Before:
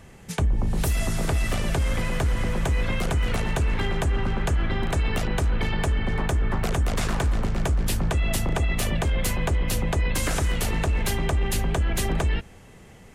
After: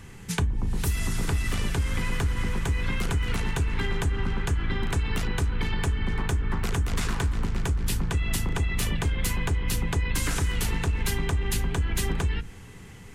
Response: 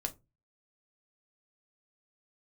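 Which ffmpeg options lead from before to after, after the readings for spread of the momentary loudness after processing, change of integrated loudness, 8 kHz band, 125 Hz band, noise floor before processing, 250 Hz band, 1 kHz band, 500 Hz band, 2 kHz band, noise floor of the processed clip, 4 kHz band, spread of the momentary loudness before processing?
2 LU, −2.5 dB, −1.5 dB, −2.0 dB, −47 dBFS, −3.0 dB, −4.5 dB, −6.0 dB, −1.5 dB, −44 dBFS, −1.5 dB, 1 LU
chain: -filter_complex "[0:a]equalizer=frequency=600:width=2.2:gain=-12.5,acompressor=threshold=-26dB:ratio=6,asplit=2[link_01][link_02];[1:a]atrim=start_sample=2205,asetrate=42336,aresample=44100[link_03];[link_02][link_03]afir=irnorm=-1:irlink=0,volume=-5.5dB[link_04];[link_01][link_04]amix=inputs=2:normalize=0"

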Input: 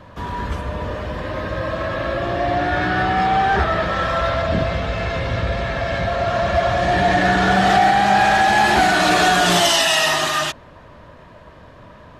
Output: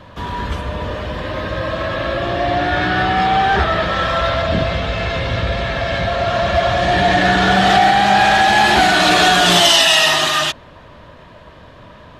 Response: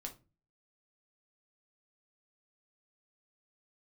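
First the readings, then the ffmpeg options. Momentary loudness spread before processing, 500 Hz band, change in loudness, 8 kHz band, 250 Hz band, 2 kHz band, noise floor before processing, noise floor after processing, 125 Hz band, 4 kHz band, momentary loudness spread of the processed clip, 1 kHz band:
12 LU, +2.0 dB, +3.0 dB, +3.0 dB, +2.0 dB, +3.0 dB, −43 dBFS, −41 dBFS, +2.0 dB, +6.5 dB, 14 LU, +2.0 dB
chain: -af "equalizer=frequency=3400:width=1.5:gain=5.5,volume=2dB"

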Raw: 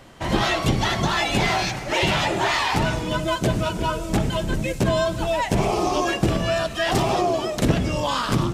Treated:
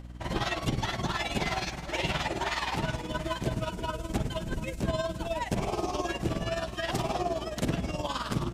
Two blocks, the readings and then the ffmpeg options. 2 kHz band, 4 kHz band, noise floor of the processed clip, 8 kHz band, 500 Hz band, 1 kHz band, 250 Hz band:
−10.0 dB, −10.0 dB, −40 dBFS, −10.0 dB, −10.0 dB, −10.0 dB, −9.5 dB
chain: -af "aecho=1:1:733:0.188,aeval=exprs='val(0)+0.0251*(sin(2*PI*60*n/s)+sin(2*PI*2*60*n/s)/2+sin(2*PI*3*60*n/s)/3+sin(2*PI*4*60*n/s)/4+sin(2*PI*5*60*n/s)/5)':channel_layout=same,tremolo=f=19:d=0.65,volume=-7dB"

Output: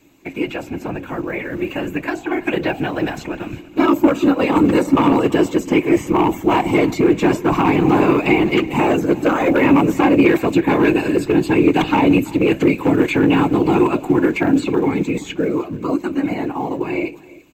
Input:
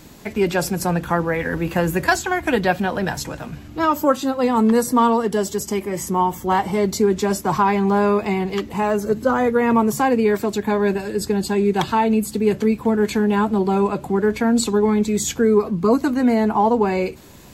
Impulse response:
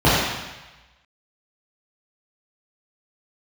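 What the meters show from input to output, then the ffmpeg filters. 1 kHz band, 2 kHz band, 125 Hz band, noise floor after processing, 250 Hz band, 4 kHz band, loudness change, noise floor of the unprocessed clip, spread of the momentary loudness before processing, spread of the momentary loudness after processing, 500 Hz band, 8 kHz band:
−0.5 dB, +3.0 dB, +2.5 dB, −37 dBFS, +4.5 dB, +1.5 dB, +2.5 dB, −38 dBFS, 6 LU, 10 LU, +1.0 dB, can't be measured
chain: -filter_complex "[0:a]bandreject=frequency=247.4:width_type=h:width=4,bandreject=frequency=494.8:width_type=h:width=4,bandreject=frequency=742.2:width_type=h:width=4,bandreject=frequency=989.6:width_type=h:width=4,agate=range=-8dB:threshold=-34dB:ratio=16:detection=peak,equalizer=frequency=80:width=1.1:gain=-7.5,acrossover=split=590|3500[link_01][link_02][link_03];[link_01]acompressor=threshold=-22dB:ratio=4[link_04];[link_02]acompressor=threshold=-24dB:ratio=4[link_05];[link_03]acompressor=threshold=-46dB:ratio=4[link_06];[link_04][link_05][link_06]amix=inputs=3:normalize=0,afftfilt=real='hypot(re,im)*cos(2*PI*random(0))':imag='hypot(re,im)*sin(2*PI*random(1))':win_size=512:overlap=0.75,dynaudnorm=framelen=220:gausssize=31:maxgain=11dB,asplit=2[link_07][link_08];[link_08]acrusher=bits=4:mode=log:mix=0:aa=0.000001,volume=-12dB[link_09];[link_07][link_09]amix=inputs=2:normalize=0,asoftclip=type=hard:threshold=-11dB,superequalizer=6b=2.82:12b=2.51:14b=0.562:16b=0.282,asplit=2[link_10][link_11];[link_11]aecho=0:1:334:0.0944[link_12];[link_10][link_12]amix=inputs=2:normalize=0"

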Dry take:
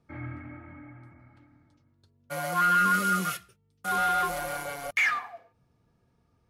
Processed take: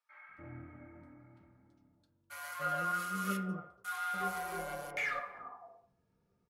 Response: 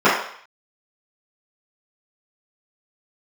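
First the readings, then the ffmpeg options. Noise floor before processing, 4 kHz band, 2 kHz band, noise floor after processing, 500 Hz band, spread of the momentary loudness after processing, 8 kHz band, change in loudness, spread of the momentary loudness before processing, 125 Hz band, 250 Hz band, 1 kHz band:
−70 dBFS, −11.0 dB, −11.0 dB, −77 dBFS, −7.0 dB, 19 LU, −10.5 dB, −10.5 dB, 19 LU, −7.5 dB, −6.0 dB, −10.5 dB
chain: -filter_complex "[0:a]alimiter=limit=-20.5dB:level=0:latency=1:release=23,acrossover=split=960[link_01][link_02];[link_01]adelay=290[link_03];[link_03][link_02]amix=inputs=2:normalize=0,asplit=2[link_04][link_05];[1:a]atrim=start_sample=2205,lowpass=3700[link_06];[link_05][link_06]afir=irnorm=-1:irlink=0,volume=-27dB[link_07];[link_04][link_07]amix=inputs=2:normalize=0,volume=-9dB"

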